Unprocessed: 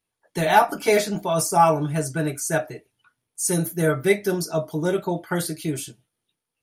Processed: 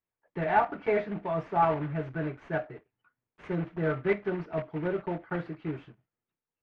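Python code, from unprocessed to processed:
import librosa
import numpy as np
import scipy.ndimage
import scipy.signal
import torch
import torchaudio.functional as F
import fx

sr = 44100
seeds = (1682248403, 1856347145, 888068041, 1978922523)

y = fx.block_float(x, sr, bits=3)
y = scipy.signal.sosfilt(scipy.signal.butter(4, 2200.0, 'lowpass', fs=sr, output='sos'), y)
y = F.gain(torch.from_numpy(y), -8.0).numpy()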